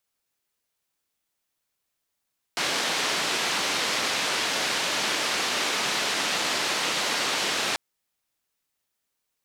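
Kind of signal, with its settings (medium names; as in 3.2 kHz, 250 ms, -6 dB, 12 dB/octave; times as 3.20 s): noise band 220–4600 Hz, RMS -26.5 dBFS 5.19 s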